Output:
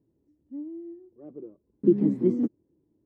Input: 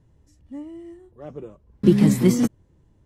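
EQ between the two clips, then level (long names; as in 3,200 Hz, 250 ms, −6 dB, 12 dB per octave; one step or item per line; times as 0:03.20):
resonant band-pass 320 Hz, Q 3
0.0 dB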